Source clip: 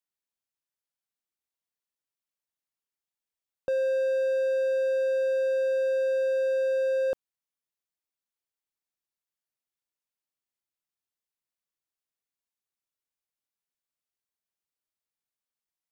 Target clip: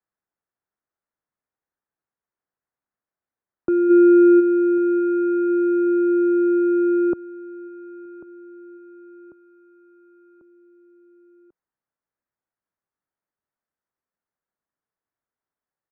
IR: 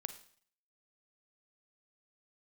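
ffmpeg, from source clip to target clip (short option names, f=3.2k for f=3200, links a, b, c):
-filter_complex "[0:a]asplit=3[a][b][c];[a]afade=t=out:st=3.89:d=0.02[d];[b]acontrast=57,afade=t=in:st=3.89:d=0.02,afade=t=out:st=4.39:d=0.02[e];[c]afade=t=in:st=4.39:d=0.02[f];[d][e][f]amix=inputs=3:normalize=0,highpass=f=230:t=q:w=0.5412,highpass=f=230:t=q:w=1.307,lowpass=f=2k:t=q:w=0.5176,lowpass=f=2k:t=q:w=0.7071,lowpass=f=2k:t=q:w=1.932,afreqshift=-180,aecho=1:1:1093|2186|3279|4372:0.126|0.0642|0.0327|0.0167,volume=8dB"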